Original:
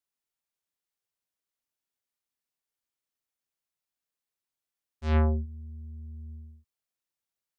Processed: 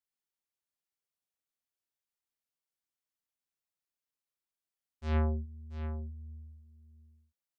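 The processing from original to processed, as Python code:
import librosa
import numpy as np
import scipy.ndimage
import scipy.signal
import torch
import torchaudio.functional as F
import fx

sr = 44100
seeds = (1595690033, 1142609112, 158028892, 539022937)

y = x + 10.0 ** (-11.0 / 20.0) * np.pad(x, (int(683 * sr / 1000.0), 0))[:len(x)]
y = y * 10.0 ** (-5.5 / 20.0)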